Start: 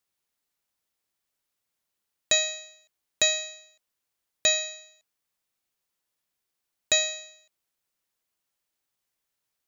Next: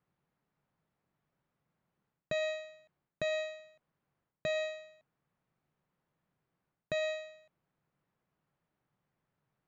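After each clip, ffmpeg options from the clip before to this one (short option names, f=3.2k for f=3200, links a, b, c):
-af "lowpass=1.4k,areverse,acompressor=threshold=-39dB:ratio=8,areverse,equalizer=f=150:t=o:w=0.97:g=14,volume=7dB"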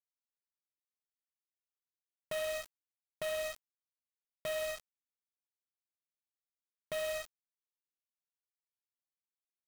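-af "aresample=8000,asoftclip=type=hard:threshold=-33.5dB,aresample=44100,acrusher=bits=6:mix=0:aa=0.000001,volume=1dB"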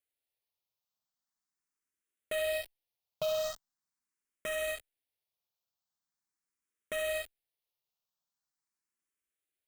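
-filter_complex "[0:a]asplit=2[a][b];[b]aeval=exprs='0.0133*(abs(mod(val(0)/0.0133+3,4)-2)-1)':c=same,volume=-10dB[c];[a][c]amix=inputs=2:normalize=0,asplit=2[d][e];[e]afreqshift=0.42[f];[d][f]amix=inputs=2:normalize=1,volume=5dB"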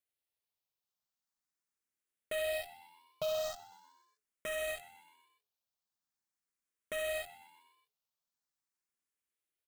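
-filter_complex "[0:a]asplit=6[a][b][c][d][e][f];[b]adelay=125,afreqshift=83,volume=-19dB[g];[c]adelay=250,afreqshift=166,volume=-23.7dB[h];[d]adelay=375,afreqshift=249,volume=-28.5dB[i];[e]adelay=500,afreqshift=332,volume=-33.2dB[j];[f]adelay=625,afreqshift=415,volume=-37.9dB[k];[a][g][h][i][j][k]amix=inputs=6:normalize=0,volume=-2.5dB"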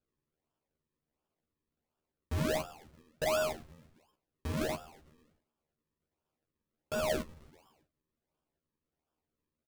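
-filter_complex "[0:a]acrusher=samples=42:mix=1:aa=0.000001:lfo=1:lforange=42:lforate=1.4,asplit=2[a][b];[b]adelay=13,volume=-3dB[c];[a][c]amix=inputs=2:normalize=0,volume=1dB"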